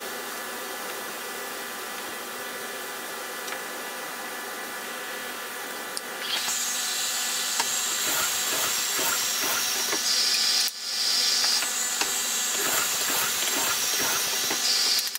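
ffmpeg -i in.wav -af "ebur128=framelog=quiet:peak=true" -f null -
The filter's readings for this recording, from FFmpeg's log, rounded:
Integrated loudness:
  I:         -24.8 LUFS
  Threshold: -34.8 LUFS
Loudness range:
  LRA:        10.5 LU
  Threshold: -44.8 LUFS
  LRA low:   -32.6 LUFS
  LRA high:  -22.1 LUFS
True peak:
  Peak:       -7.8 dBFS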